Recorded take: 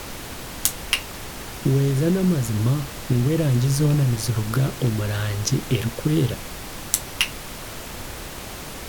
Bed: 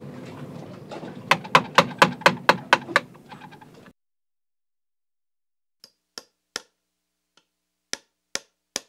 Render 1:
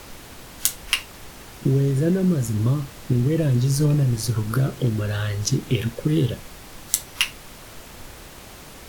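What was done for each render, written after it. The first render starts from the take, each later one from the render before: noise print and reduce 7 dB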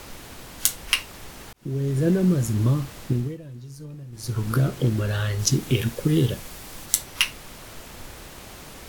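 1.53–2.09 s: fade in; 3.02–4.48 s: dip -20 dB, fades 0.36 s; 5.39–6.86 s: treble shelf 5.5 kHz +5.5 dB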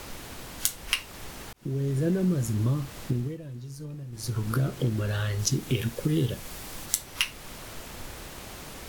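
compression 1.5:1, threshold -31 dBFS, peak gain reduction 6.5 dB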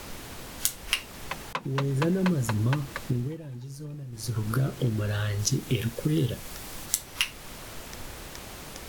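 add bed -17 dB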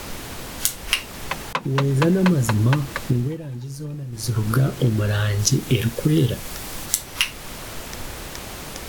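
trim +7.5 dB; peak limiter -1 dBFS, peak gain reduction 2.5 dB

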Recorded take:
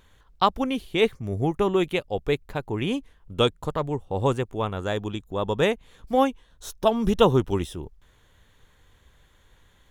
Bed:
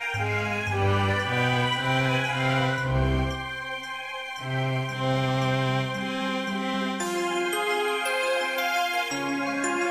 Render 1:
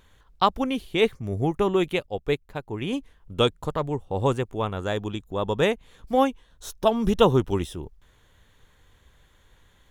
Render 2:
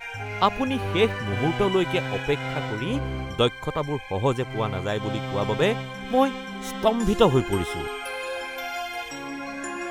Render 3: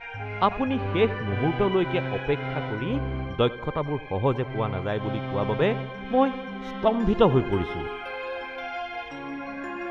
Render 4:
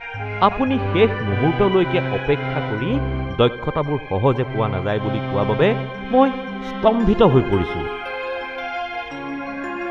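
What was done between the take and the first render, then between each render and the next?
2.06–2.93 s: upward expansion, over -35 dBFS
add bed -6 dB
distance through air 290 m; tape echo 93 ms, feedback 68%, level -16.5 dB, low-pass 1.4 kHz
trim +6.5 dB; peak limiter -1 dBFS, peak gain reduction 3 dB

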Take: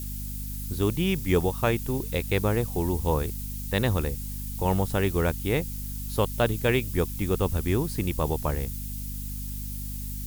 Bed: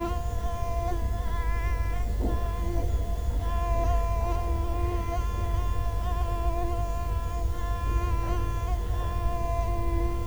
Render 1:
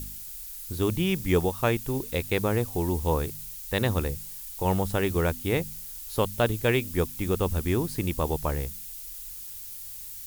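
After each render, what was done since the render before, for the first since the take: de-hum 50 Hz, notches 5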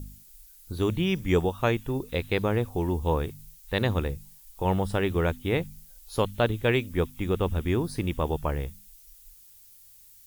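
noise print and reduce 13 dB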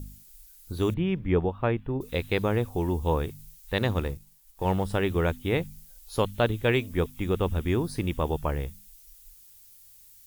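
0.94–2.01 s: distance through air 480 m; 3.77–4.91 s: companding laws mixed up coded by A; 6.64–7.06 s: de-hum 217.1 Hz, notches 5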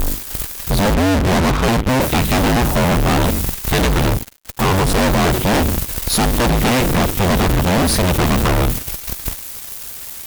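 cycle switcher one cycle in 2, inverted; fuzz box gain 49 dB, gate -50 dBFS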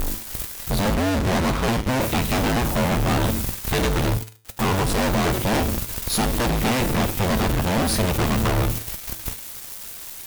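bit crusher 5-bit; feedback comb 110 Hz, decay 0.41 s, harmonics all, mix 60%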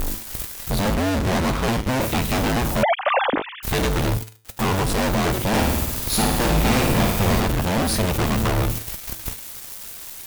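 2.83–3.63 s: formants replaced by sine waves; 5.48–7.40 s: flutter echo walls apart 9.5 m, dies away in 0.9 s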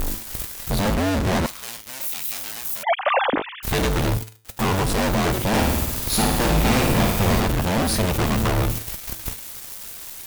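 1.46–2.87 s: pre-emphasis filter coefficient 0.97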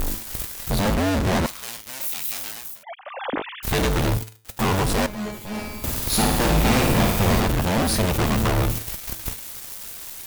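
2.46–3.50 s: dip -17 dB, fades 0.34 s; 5.06–5.84 s: feedback comb 210 Hz, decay 0.33 s, mix 90%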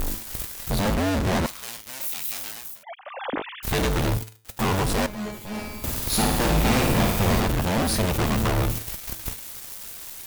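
trim -2 dB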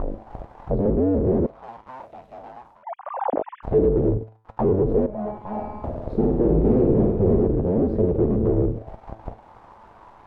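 touch-sensitive low-pass 410–1200 Hz down, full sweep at -20 dBFS

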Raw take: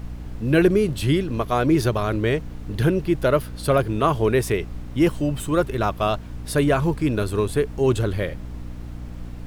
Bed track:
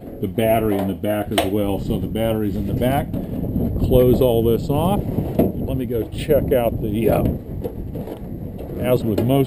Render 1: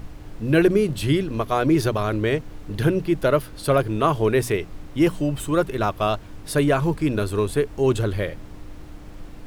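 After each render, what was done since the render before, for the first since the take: hum notches 60/120/180/240 Hz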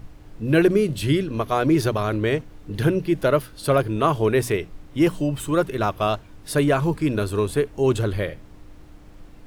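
noise print and reduce 6 dB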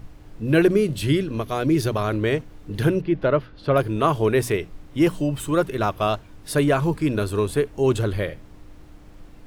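1.27–1.91 s: dynamic bell 980 Hz, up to -6 dB, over -32 dBFS, Q 0.7; 3.01–3.76 s: distance through air 260 m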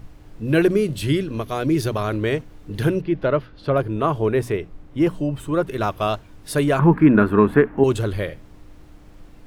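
3.70–5.68 s: treble shelf 2.6 kHz -10 dB; 6.79–7.84 s: FFT filter 110 Hz 0 dB, 210 Hz +14 dB, 520 Hz +3 dB, 850 Hz +10 dB, 1.7 kHz +12 dB, 4.6 kHz -16 dB, 8.5 kHz -20 dB, 13 kHz -9 dB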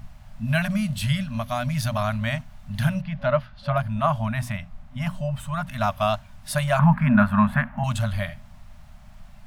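FFT band-reject 250–560 Hz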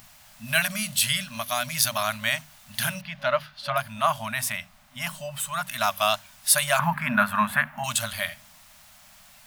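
tilt EQ +4.5 dB/octave; hum notches 50/100/150/200 Hz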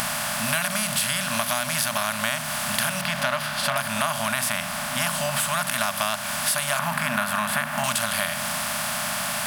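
spectral levelling over time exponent 0.4; compression, threshold -21 dBFS, peak gain reduction 10 dB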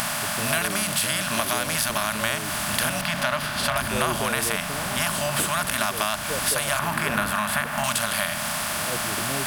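add bed track -17 dB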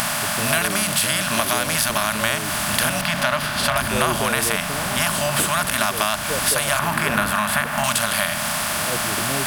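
trim +4 dB; peak limiter -1 dBFS, peak gain reduction 1 dB

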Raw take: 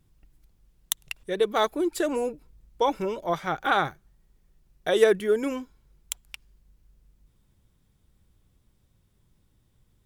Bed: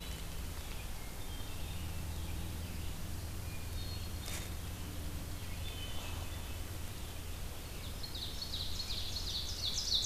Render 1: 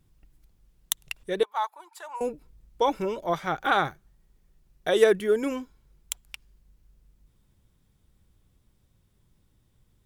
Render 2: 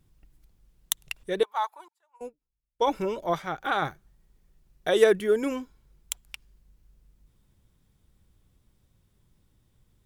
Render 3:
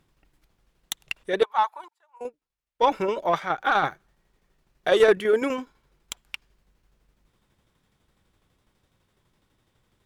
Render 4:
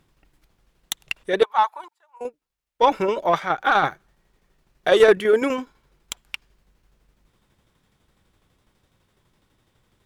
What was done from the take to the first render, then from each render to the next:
1.43–2.21 s: ladder high-pass 870 Hz, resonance 80%
1.88–2.87 s: upward expansion 2.5:1, over -41 dBFS; 3.42–3.82 s: gain -4 dB
overdrive pedal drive 17 dB, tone 2.4 kHz, clips at -4.5 dBFS; tremolo saw down 12 Hz, depth 50%
trim +3.5 dB

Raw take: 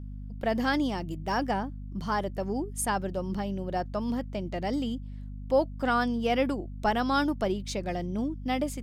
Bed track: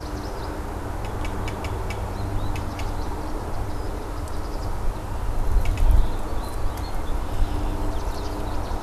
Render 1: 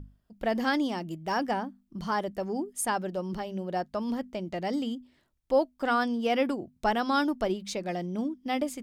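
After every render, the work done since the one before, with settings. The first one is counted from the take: hum notches 50/100/150/200/250 Hz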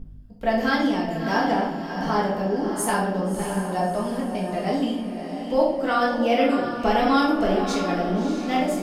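on a send: echo that smears into a reverb 641 ms, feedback 41%, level -7.5 dB; on the sum: simulated room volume 190 m³, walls mixed, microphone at 1.6 m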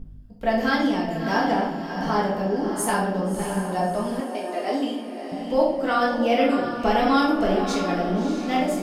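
4.20–5.32 s: steep high-pass 250 Hz 48 dB/octave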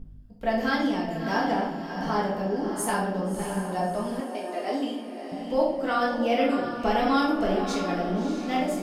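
trim -3.5 dB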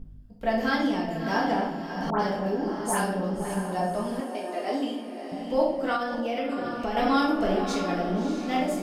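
2.10–3.54 s: phase dispersion highs, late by 99 ms, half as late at 1.8 kHz; 5.96–6.97 s: compression, threshold -25 dBFS

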